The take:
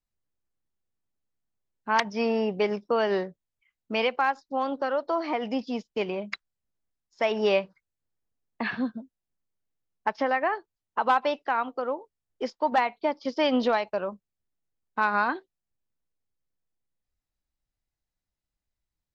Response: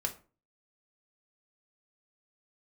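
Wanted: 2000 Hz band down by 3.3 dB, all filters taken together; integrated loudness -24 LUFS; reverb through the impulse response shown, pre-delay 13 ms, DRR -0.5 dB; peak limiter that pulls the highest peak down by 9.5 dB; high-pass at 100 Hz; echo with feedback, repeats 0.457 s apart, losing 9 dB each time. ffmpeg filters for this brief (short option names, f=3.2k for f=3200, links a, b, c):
-filter_complex "[0:a]highpass=100,equalizer=f=2k:t=o:g=-4.5,alimiter=limit=-21.5dB:level=0:latency=1,aecho=1:1:457|914|1371|1828:0.355|0.124|0.0435|0.0152,asplit=2[a][b];[1:a]atrim=start_sample=2205,adelay=13[c];[b][c]afir=irnorm=-1:irlink=0,volume=-2dB[d];[a][d]amix=inputs=2:normalize=0,volume=5.5dB"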